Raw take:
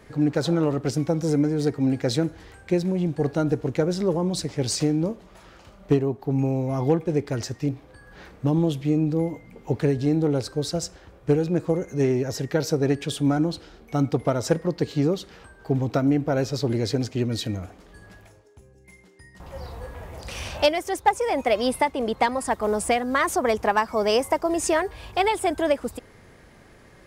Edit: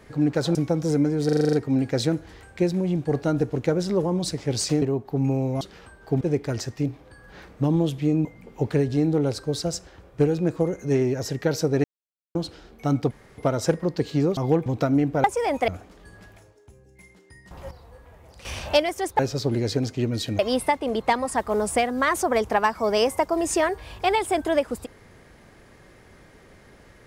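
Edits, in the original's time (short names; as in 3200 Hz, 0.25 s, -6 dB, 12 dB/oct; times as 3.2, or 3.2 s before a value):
0.55–0.94 cut
1.64 stutter 0.04 s, 8 plays
4.93–5.96 cut
6.75–7.04 swap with 15.19–15.79
9.08–9.34 cut
12.93–13.44 mute
14.2 insert room tone 0.27 s
16.37–17.57 swap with 21.08–21.52
19.6–20.34 gain -11 dB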